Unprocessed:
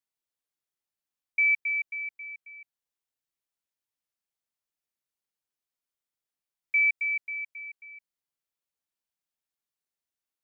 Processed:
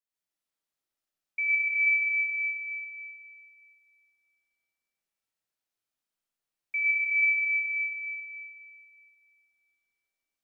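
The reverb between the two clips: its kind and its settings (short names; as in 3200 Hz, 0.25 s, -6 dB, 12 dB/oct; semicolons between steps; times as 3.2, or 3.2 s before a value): digital reverb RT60 2.5 s, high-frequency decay 0.85×, pre-delay 60 ms, DRR -8.5 dB; gain -6.5 dB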